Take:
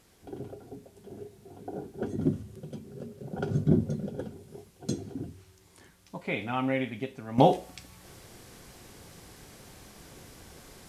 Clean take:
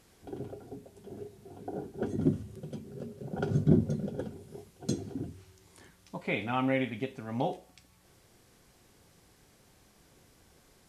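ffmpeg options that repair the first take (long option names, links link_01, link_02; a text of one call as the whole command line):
ffmpeg -i in.wav -af "adeclick=threshold=4,agate=range=-21dB:threshold=-47dB,asetnsamples=nb_out_samples=441:pad=0,asendcmd='7.38 volume volume -11.5dB',volume=0dB" out.wav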